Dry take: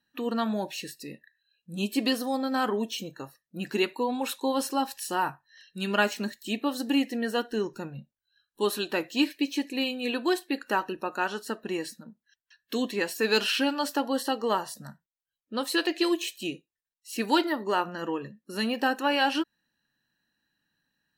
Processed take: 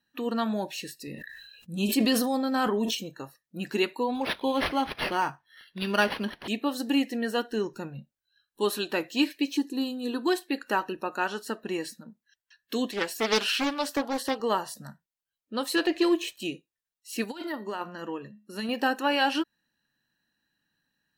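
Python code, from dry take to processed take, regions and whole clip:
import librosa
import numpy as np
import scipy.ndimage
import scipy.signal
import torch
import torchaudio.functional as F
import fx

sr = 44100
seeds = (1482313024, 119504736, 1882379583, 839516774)

y = fx.chain(x, sr, fx.low_shelf(hz=110.0, db=8.5),
    fx.sustainer(db_per_s=33.0), at=(1.07, 2.95))
y = fx.chain(y, sr, fx.high_shelf(hz=3700.0, db=10.0),
    fx.resample_linear(factor=6), at=(4.15, 6.48))
y = fx.chain(y, sr, fx.peak_eq(hz=180.0, db=5.5, octaves=1.9),
    fx.fixed_phaser(hz=610.0, stages=6), at=(9.57, 10.27))
y = fx.chain(y, sr, fx.highpass(hz=270.0, slope=6),
    fx.doppler_dist(depth_ms=0.44), at=(12.91, 14.4))
y = fx.chain(y, sr, fx.leveller(passes=1),
    fx.high_shelf(hz=2700.0, db=-8.5), at=(15.76, 16.4))
y = fx.chain(y, sr, fx.comb_fb(f0_hz=210.0, decay_s=0.4, harmonics='odd', damping=0.0, mix_pct=50),
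    fx.over_compress(threshold_db=-32.0, ratio=-0.5), at=(17.24, 18.69))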